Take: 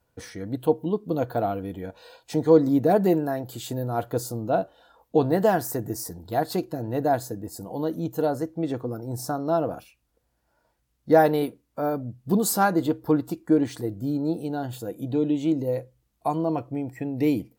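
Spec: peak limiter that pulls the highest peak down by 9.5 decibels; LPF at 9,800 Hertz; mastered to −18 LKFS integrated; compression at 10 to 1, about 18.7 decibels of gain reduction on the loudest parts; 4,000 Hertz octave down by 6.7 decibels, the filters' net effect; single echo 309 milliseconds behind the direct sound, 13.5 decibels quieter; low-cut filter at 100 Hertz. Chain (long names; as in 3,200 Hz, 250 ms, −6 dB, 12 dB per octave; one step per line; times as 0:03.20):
high-pass filter 100 Hz
low-pass filter 9,800 Hz
parametric band 4,000 Hz −8.5 dB
downward compressor 10 to 1, threshold −31 dBFS
brickwall limiter −27.5 dBFS
single-tap delay 309 ms −13.5 dB
level +20.5 dB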